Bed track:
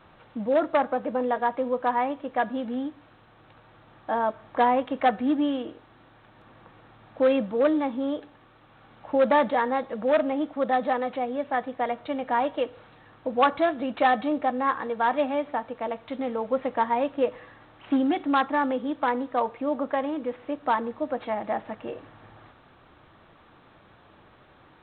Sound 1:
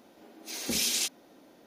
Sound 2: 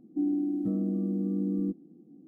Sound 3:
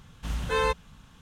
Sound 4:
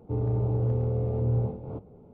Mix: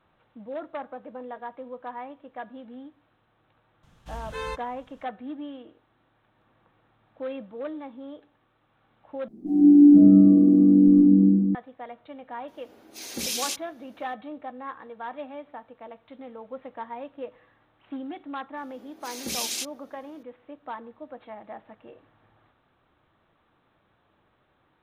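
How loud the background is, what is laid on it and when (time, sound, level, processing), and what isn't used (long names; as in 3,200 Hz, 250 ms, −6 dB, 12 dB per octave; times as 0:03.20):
bed track −12.5 dB
0:03.83: mix in 3 −8 dB
0:09.28: overwrite with 2 −4 dB + rectangular room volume 37 cubic metres, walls hard, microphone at 1.4 metres
0:12.48: mix in 1 −1.5 dB
0:18.57: mix in 1 −2 dB
not used: 4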